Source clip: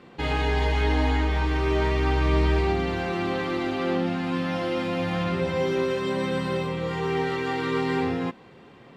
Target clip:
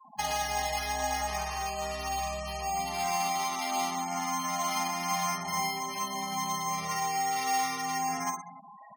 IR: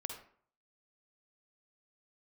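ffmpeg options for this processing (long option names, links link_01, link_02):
-filter_complex "[0:a]aecho=1:1:4.8:0.97,acrossover=split=410|3000[link_01][link_02][link_03];[link_02]acompressor=threshold=-32dB:ratio=1.5[link_04];[link_01][link_04][link_03]amix=inputs=3:normalize=0,alimiter=limit=-22.5dB:level=0:latency=1:release=326,afftfilt=real='re*gte(hypot(re,im),0.00891)':imag='im*gte(hypot(re,im),0.00891)':win_size=1024:overlap=0.75,lowshelf=frequency=570:width_type=q:width=3:gain=-9.5,bandreject=frequency=60:width_type=h:width=6,bandreject=frequency=120:width_type=h:width=6,bandreject=frequency=180:width_type=h:width=6,bandreject=frequency=240:width_type=h:width=6,bandreject=frequency=300:width_type=h:width=6,bandreject=frequency=360:width_type=h:width=6,bandreject=frequency=420:width_type=h:width=6,bandreject=frequency=480:width_type=h:width=6,aecho=1:1:50|112.5|190.6|288.3|410.4:0.631|0.398|0.251|0.158|0.1,acrusher=samples=6:mix=1:aa=0.000001,afftfilt=real='re*gte(hypot(re,im),0.00891)':imag='im*gte(hypot(re,im),0.00891)':win_size=1024:overlap=0.75,equalizer=frequency=6100:width_type=o:width=0.47:gain=8.5"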